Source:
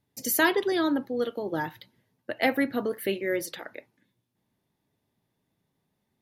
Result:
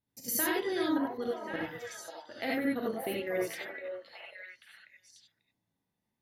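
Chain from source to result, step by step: level quantiser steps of 14 dB; delay with a stepping band-pass 0.542 s, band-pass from 800 Hz, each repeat 1.4 oct, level -2 dB; non-linear reverb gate 0.11 s rising, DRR -3 dB; gain -6 dB

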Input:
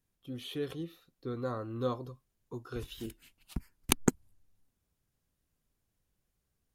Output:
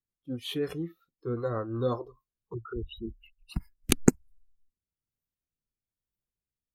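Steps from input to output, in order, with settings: 2.54–3.54 formant sharpening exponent 3; rotary speaker horn 5.5 Hz, later 1.1 Hz, at 1.77; spectral noise reduction 21 dB; gain +8 dB

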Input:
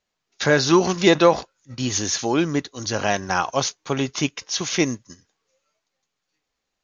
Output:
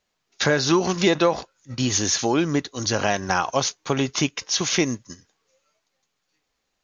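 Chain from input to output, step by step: compressor 2.5:1, threshold -22 dBFS, peak gain reduction 9 dB; gain +3.5 dB

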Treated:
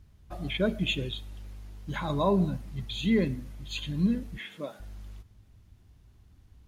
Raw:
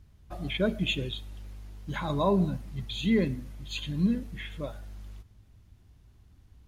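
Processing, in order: 4.38–4.8 HPF 180 Hz 24 dB/oct

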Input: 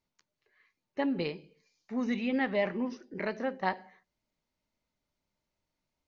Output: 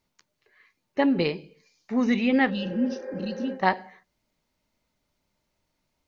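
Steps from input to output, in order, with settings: spectral repair 2.52–3.49, 350–2600 Hz after; gain +8.5 dB

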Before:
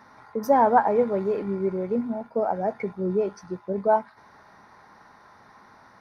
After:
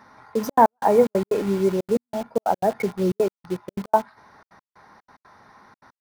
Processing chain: step gate "xxxxxx.x..xxx.x." 183 bpm -60 dB; in parallel at -4 dB: bit-crush 6-bit; on the sum: gain +1 dB

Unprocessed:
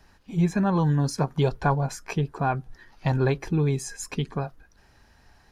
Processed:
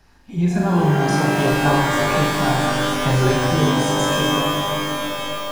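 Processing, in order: flutter echo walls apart 6.8 m, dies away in 0.59 s; shimmer reverb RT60 3.7 s, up +12 st, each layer -2 dB, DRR 1 dB; gain +1 dB

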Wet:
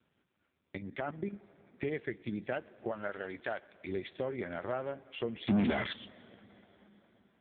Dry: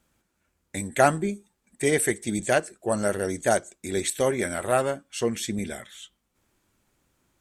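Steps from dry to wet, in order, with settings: 0.77–1.33 level quantiser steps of 13 dB; 2.91–3.87 tilt shelf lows -8.5 dB, about 710 Hz; compressor 4:1, threshold -34 dBFS, peak gain reduction 16 dB; 5.47–5.93 sample leveller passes 5; plate-style reverb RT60 4.5 s, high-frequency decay 0.75×, pre-delay 85 ms, DRR 19 dB; AMR-NB 5.9 kbps 8000 Hz

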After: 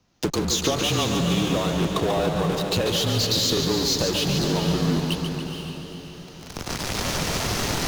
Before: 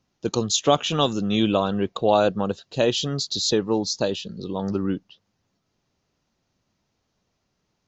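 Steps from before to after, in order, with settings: recorder AGC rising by 12 dB/s; in parallel at -8 dB: fuzz box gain 44 dB, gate -44 dBFS; on the sum: frequency shift -28 Hz; compressor 6:1, threshold -29 dBFS, peak gain reduction 18 dB; on a send: diffused feedback echo 0.469 s, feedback 45%, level -7 dB; on the sum: crackling interface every 0.35 s, samples 1024, repeat, from 0.4; warbling echo 0.142 s, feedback 60%, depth 107 cents, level -6.5 dB; gain +6 dB

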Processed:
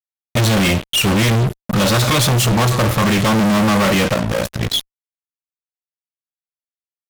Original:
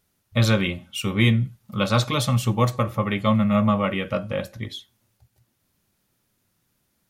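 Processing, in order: fuzz box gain 43 dB, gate -41 dBFS; 4.14–4.74 AM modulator 57 Hz, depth 75%

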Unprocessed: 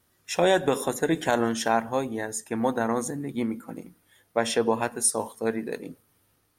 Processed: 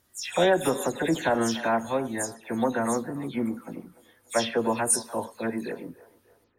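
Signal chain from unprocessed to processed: spectral delay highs early, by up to 0.148 s; on a send: band-limited delay 0.294 s, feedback 40%, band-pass 860 Hz, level -17 dB

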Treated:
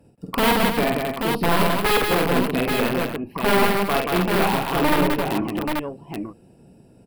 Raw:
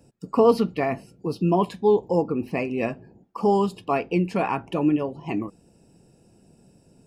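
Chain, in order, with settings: 1.66–2.06 comb 6.8 ms, depth 88%; tube stage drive 13 dB, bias 0.7; wrapped overs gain 19.5 dB; bell 6500 Hz -14.5 dB 0.84 oct; tapped delay 48/177/263/832 ms -3/-3/-9/-4.5 dB; gain +5.5 dB

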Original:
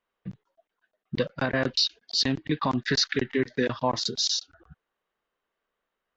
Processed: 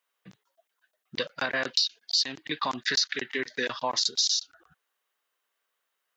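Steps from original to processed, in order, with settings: HPF 1100 Hz 6 dB/oct; high shelf 5000 Hz +11 dB; compressor 5:1, threshold -25 dBFS, peak gain reduction 9.5 dB; gain +2.5 dB

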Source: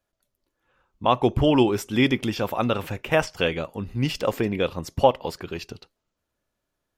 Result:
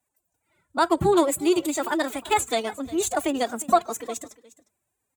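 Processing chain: formant-preserving pitch shift +12 st; HPF 44 Hz; resonant high shelf 4600 Hz +7 dB, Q 3; notches 50/100/150 Hz; echo 0.479 s -19.5 dB; speed mistake 33 rpm record played at 45 rpm

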